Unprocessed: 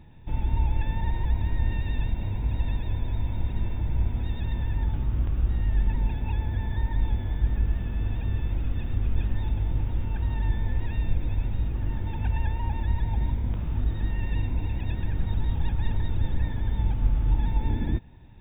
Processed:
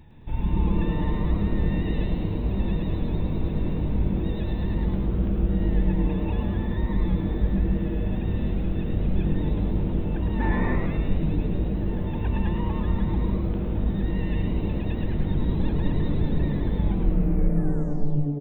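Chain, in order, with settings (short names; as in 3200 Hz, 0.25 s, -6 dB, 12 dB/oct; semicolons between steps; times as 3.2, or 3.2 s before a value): tape stop at the end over 1.59 s; spectral gain 10.4–10.76, 200–2600 Hz +12 dB; wow and flutter 26 cents; on a send: frequency-shifting echo 0.107 s, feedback 47%, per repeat +140 Hz, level -6 dB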